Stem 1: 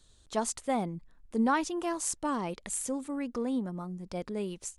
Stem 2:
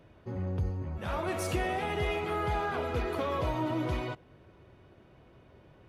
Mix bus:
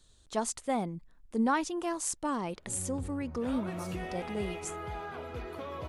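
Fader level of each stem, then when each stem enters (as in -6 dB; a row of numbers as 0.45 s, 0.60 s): -1.0 dB, -8.5 dB; 0.00 s, 2.40 s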